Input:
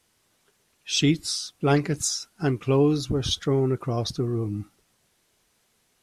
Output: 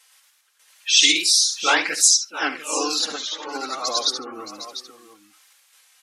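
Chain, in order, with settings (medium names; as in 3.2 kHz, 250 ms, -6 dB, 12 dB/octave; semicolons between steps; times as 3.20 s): high-pass 1.2 kHz 12 dB/octave; spectral gate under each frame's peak -20 dB strong; comb 3.8 ms, depth 60%; in parallel at -2.5 dB: peak limiter -22.5 dBFS, peak gain reduction 10.5 dB; on the sum: trance gate "x..xxxxxxxx.x.x" 76 bpm -12 dB; on a send: multi-tap echo 72/698 ms -14/-12 dB; on the sum: ever faster or slower copies 115 ms, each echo +1 st, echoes 2; trim +6 dB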